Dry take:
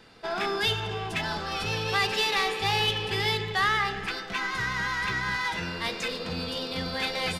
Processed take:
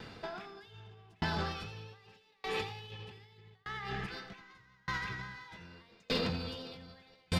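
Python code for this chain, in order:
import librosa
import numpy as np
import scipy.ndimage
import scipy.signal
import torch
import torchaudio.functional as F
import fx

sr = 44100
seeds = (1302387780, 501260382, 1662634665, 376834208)

y = fx.peak_eq(x, sr, hz=10000.0, db=-8.0, octaves=0.88)
y = fx.over_compress(y, sr, threshold_db=-35.0, ratio=-1.0)
y = fx.peak_eq(y, sr, hz=110.0, db=7.0, octaves=1.9)
y = y + 10.0 ** (-10.5 / 20.0) * np.pad(y, (int(84 * sr / 1000.0), 0))[:len(y)]
y = fx.tremolo_decay(y, sr, direction='decaying', hz=0.82, depth_db=36)
y = y * librosa.db_to_amplitude(1.0)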